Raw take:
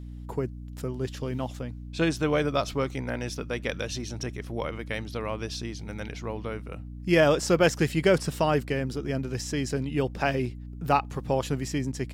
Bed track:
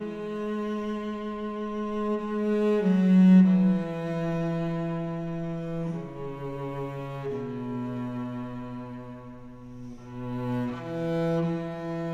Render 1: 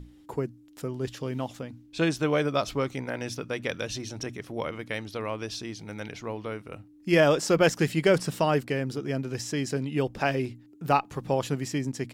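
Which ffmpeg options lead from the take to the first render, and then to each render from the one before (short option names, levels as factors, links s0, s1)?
-af "bandreject=f=60:t=h:w=6,bandreject=f=120:t=h:w=6,bandreject=f=180:t=h:w=6,bandreject=f=240:t=h:w=6"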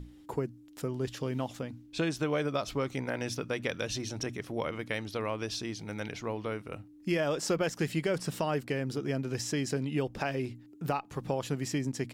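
-af "alimiter=limit=0.168:level=0:latency=1:release=398,acompressor=threshold=0.0355:ratio=2"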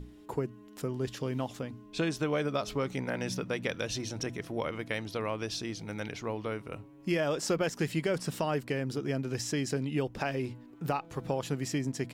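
-filter_complex "[1:a]volume=0.0501[s0];[0:a][s0]amix=inputs=2:normalize=0"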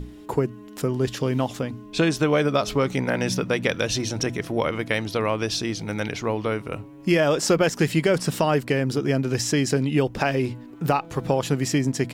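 -af "volume=3.16"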